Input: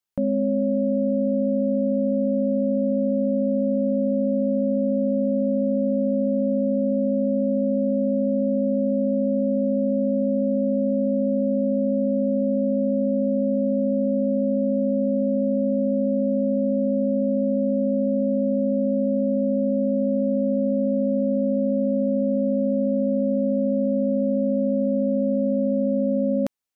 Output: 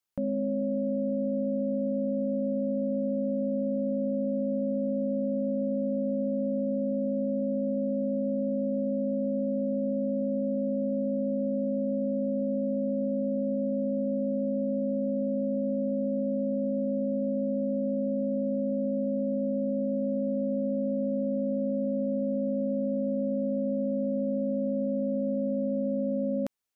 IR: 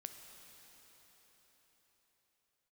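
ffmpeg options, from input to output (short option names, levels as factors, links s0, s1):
-af "alimiter=limit=0.0794:level=0:latency=1:release=52"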